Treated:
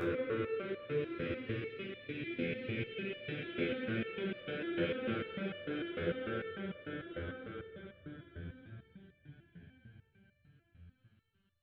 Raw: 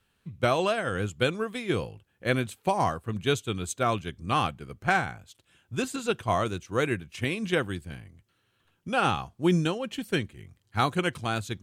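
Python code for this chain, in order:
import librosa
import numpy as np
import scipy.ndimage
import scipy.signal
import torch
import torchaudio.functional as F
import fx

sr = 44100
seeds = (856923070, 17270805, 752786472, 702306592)

y = fx.envelope_sharpen(x, sr, power=1.5)
y = scipy.signal.sosfilt(scipy.signal.butter(8, 4100.0, 'lowpass', fs=sr, output='sos'), y)
y = fx.paulstretch(y, sr, seeds[0], factor=7.7, window_s=1.0, from_s=6.9)
y = fx.resonator_held(y, sr, hz=6.7, low_hz=85.0, high_hz=590.0)
y = y * 10.0 ** (3.0 / 20.0)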